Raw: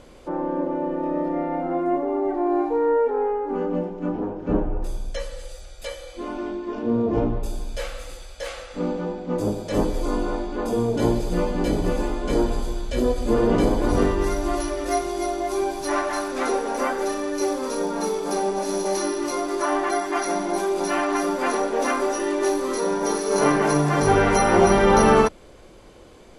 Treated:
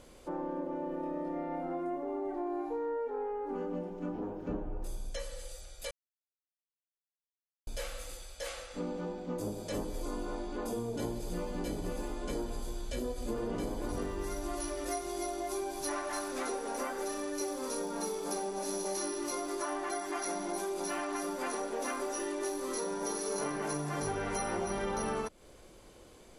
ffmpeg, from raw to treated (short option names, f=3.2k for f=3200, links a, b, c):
-filter_complex "[0:a]asplit=3[a][b][c];[a]atrim=end=5.91,asetpts=PTS-STARTPTS,afade=t=out:st=5.906:d=0.004:c=hsin[d];[b]atrim=start=5.91:end=7.67,asetpts=PTS-STARTPTS,volume=0[e];[c]atrim=start=7.67,asetpts=PTS-STARTPTS,afade=t=in:d=0.004:c=hsin[f];[d][e][f]concat=n=3:v=0:a=1,acompressor=threshold=-25dB:ratio=4,highshelf=f=7k:g=12,volume=-8.5dB"